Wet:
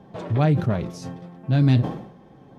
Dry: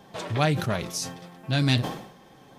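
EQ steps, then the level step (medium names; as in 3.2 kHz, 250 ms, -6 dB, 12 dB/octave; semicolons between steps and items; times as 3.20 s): high-pass 200 Hz 6 dB/octave; tilt EQ -4.5 dB/octave; -1.5 dB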